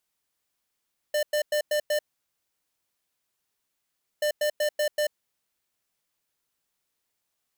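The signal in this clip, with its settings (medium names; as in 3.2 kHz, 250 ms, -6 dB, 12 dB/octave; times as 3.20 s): beep pattern square 598 Hz, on 0.09 s, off 0.10 s, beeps 5, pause 2.23 s, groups 2, -24.5 dBFS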